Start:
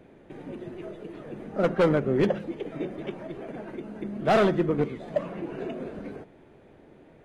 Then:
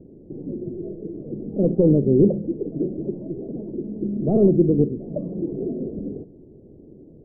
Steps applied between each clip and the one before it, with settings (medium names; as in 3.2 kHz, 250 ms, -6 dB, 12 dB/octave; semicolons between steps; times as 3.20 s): inverse Chebyshev low-pass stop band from 1.9 kHz, stop band 70 dB; trim +9 dB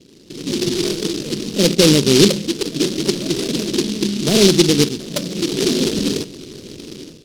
bass shelf 130 Hz -9.5 dB; level rider gain up to 15 dB; delay time shaken by noise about 4.1 kHz, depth 0.22 ms; trim -1 dB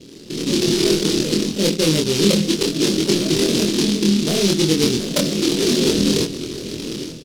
reverse; compression 10:1, threshold -20 dBFS, peak gain reduction 13.5 dB; reverse; doubling 25 ms -2 dB; trim +4.5 dB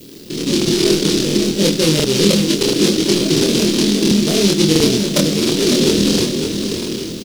added noise violet -49 dBFS; feedback delay 555 ms, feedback 35%, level -7.5 dB; crackling interface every 0.69 s, samples 2048, repeat, from 0.57 s; trim +2.5 dB